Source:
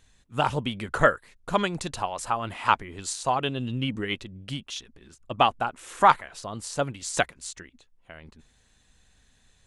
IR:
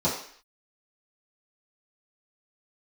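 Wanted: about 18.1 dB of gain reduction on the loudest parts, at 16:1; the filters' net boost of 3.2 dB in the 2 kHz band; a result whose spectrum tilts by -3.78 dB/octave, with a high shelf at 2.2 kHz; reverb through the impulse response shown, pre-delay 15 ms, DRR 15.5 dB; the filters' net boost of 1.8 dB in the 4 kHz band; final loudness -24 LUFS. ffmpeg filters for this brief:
-filter_complex "[0:a]equalizer=f=2000:t=o:g=7,highshelf=f=2200:g=-7.5,equalizer=f=4000:t=o:g=6.5,acompressor=threshold=0.0316:ratio=16,asplit=2[s0][s1];[1:a]atrim=start_sample=2205,adelay=15[s2];[s1][s2]afir=irnorm=-1:irlink=0,volume=0.0398[s3];[s0][s3]amix=inputs=2:normalize=0,volume=4.22"

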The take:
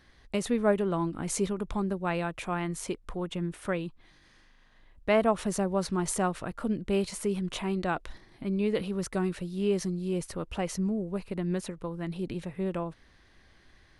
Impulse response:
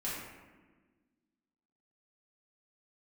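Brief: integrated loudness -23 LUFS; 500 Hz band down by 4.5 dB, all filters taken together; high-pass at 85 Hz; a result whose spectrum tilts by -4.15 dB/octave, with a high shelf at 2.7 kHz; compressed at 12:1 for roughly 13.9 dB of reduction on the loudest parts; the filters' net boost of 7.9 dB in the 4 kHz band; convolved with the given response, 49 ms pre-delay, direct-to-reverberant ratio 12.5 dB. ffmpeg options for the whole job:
-filter_complex "[0:a]highpass=85,equalizer=f=500:t=o:g=-6.5,highshelf=f=2700:g=3.5,equalizer=f=4000:t=o:g=7.5,acompressor=threshold=0.0178:ratio=12,asplit=2[s0][s1];[1:a]atrim=start_sample=2205,adelay=49[s2];[s1][s2]afir=irnorm=-1:irlink=0,volume=0.158[s3];[s0][s3]amix=inputs=2:normalize=0,volume=6.68"

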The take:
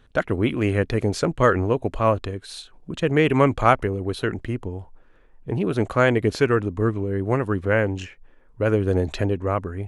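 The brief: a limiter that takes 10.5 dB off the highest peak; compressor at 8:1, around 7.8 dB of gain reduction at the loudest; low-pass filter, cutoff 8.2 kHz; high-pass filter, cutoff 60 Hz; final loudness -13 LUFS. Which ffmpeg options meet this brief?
-af "highpass=60,lowpass=8200,acompressor=threshold=0.112:ratio=8,volume=7.08,alimiter=limit=0.794:level=0:latency=1"

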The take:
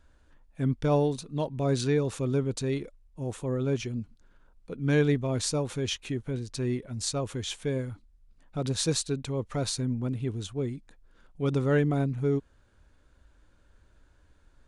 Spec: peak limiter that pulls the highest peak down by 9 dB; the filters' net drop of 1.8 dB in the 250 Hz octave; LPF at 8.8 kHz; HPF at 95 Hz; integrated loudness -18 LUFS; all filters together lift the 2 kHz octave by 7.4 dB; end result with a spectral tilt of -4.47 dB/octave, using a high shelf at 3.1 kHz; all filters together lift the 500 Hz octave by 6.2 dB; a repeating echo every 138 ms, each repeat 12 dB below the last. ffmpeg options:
-af "highpass=95,lowpass=8800,equalizer=f=250:t=o:g=-5,equalizer=f=500:t=o:g=8.5,equalizer=f=2000:t=o:g=7,highshelf=f=3100:g=6.5,alimiter=limit=0.141:level=0:latency=1,aecho=1:1:138|276|414:0.251|0.0628|0.0157,volume=3.35"

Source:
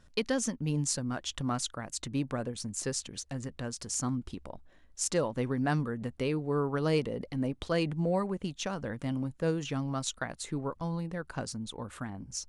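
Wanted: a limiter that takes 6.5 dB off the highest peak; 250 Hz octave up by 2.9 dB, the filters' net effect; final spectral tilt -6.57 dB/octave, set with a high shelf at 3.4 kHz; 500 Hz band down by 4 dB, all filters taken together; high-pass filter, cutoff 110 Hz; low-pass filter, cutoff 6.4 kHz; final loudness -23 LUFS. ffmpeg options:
-af "highpass=110,lowpass=6400,equalizer=f=250:t=o:g=5.5,equalizer=f=500:t=o:g=-6,highshelf=f=3400:g=-8,volume=3.98,alimiter=limit=0.251:level=0:latency=1"

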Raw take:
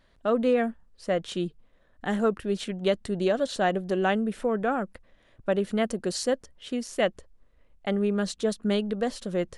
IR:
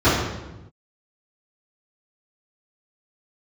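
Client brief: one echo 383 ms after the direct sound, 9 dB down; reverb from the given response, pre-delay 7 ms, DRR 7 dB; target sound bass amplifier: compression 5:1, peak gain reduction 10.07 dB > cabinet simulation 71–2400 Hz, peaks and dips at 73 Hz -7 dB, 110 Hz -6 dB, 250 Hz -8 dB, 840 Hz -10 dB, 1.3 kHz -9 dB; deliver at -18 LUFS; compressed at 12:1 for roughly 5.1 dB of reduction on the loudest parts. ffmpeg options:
-filter_complex "[0:a]acompressor=threshold=0.0631:ratio=12,aecho=1:1:383:0.355,asplit=2[s0][s1];[1:a]atrim=start_sample=2205,adelay=7[s2];[s1][s2]afir=irnorm=-1:irlink=0,volume=0.0299[s3];[s0][s3]amix=inputs=2:normalize=0,acompressor=threshold=0.0316:ratio=5,highpass=f=71:w=0.5412,highpass=f=71:w=1.3066,equalizer=f=73:t=q:w=4:g=-7,equalizer=f=110:t=q:w=4:g=-6,equalizer=f=250:t=q:w=4:g=-8,equalizer=f=840:t=q:w=4:g=-10,equalizer=f=1300:t=q:w=4:g=-9,lowpass=f=2400:w=0.5412,lowpass=f=2400:w=1.3066,volume=9.44"

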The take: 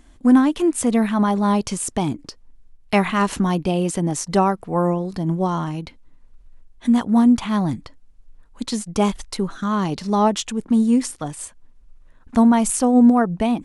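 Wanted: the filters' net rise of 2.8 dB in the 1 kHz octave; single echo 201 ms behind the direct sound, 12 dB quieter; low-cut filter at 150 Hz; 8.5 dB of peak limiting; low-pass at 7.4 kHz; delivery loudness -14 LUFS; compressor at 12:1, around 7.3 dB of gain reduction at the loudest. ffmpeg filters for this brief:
-af "highpass=150,lowpass=7400,equalizer=f=1000:t=o:g=3.5,acompressor=threshold=0.141:ratio=12,alimiter=limit=0.141:level=0:latency=1,aecho=1:1:201:0.251,volume=3.98"

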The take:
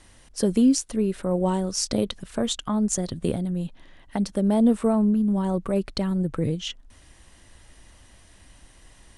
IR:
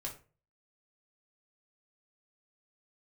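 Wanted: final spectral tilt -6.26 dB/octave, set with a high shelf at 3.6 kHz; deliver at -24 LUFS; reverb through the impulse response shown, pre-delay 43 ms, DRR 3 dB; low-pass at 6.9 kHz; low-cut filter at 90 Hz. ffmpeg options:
-filter_complex "[0:a]highpass=90,lowpass=6900,highshelf=f=3600:g=-5.5,asplit=2[s0][s1];[1:a]atrim=start_sample=2205,adelay=43[s2];[s1][s2]afir=irnorm=-1:irlink=0,volume=0.75[s3];[s0][s3]amix=inputs=2:normalize=0,volume=0.944"

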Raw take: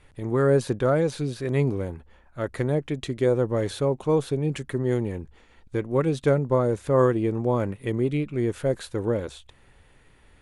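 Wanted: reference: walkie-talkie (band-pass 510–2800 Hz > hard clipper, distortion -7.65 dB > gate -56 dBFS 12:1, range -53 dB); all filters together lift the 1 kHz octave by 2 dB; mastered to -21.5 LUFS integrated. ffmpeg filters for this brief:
-af "highpass=510,lowpass=2800,equalizer=f=1000:t=o:g=3,asoftclip=type=hard:threshold=0.0562,agate=range=0.00224:threshold=0.00158:ratio=12,volume=3.76"

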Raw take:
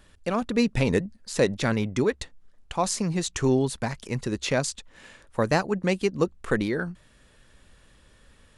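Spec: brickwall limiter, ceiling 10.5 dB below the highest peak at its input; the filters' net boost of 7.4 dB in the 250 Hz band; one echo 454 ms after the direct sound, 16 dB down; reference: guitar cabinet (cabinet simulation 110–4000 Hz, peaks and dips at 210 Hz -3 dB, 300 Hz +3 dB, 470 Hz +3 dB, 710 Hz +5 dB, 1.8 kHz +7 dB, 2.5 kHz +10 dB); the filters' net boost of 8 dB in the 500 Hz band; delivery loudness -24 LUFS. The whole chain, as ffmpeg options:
-af "equalizer=f=250:t=o:g=8,equalizer=f=500:t=o:g=4,alimiter=limit=0.188:level=0:latency=1,highpass=110,equalizer=f=210:t=q:w=4:g=-3,equalizer=f=300:t=q:w=4:g=3,equalizer=f=470:t=q:w=4:g=3,equalizer=f=710:t=q:w=4:g=5,equalizer=f=1800:t=q:w=4:g=7,equalizer=f=2500:t=q:w=4:g=10,lowpass=f=4000:w=0.5412,lowpass=f=4000:w=1.3066,aecho=1:1:454:0.158,volume=1.12"

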